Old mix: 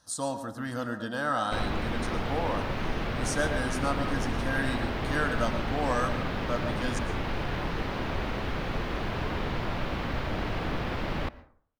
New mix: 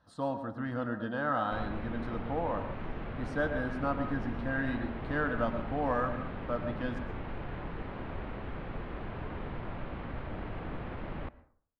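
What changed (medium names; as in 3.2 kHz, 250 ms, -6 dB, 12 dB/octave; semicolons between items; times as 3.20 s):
background -7.0 dB; master: add distance through air 460 m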